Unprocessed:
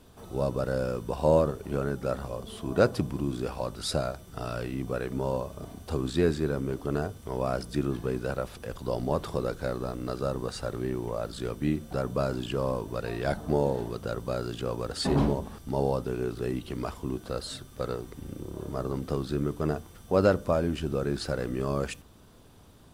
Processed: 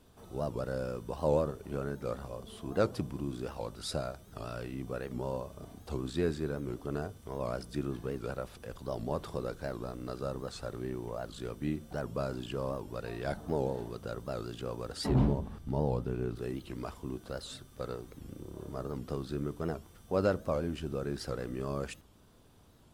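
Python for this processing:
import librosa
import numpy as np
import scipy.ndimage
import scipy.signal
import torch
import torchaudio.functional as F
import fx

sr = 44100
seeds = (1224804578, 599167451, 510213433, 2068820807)

y = fx.bass_treble(x, sr, bass_db=7, treble_db=-6, at=(15.09, 16.36))
y = fx.record_warp(y, sr, rpm=78.0, depth_cents=160.0)
y = y * 10.0 ** (-6.5 / 20.0)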